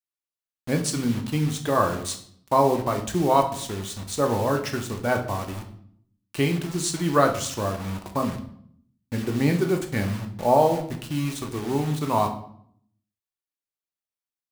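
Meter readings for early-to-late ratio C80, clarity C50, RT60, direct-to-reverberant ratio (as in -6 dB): 13.5 dB, 10.5 dB, 0.65 s, 3.5 dB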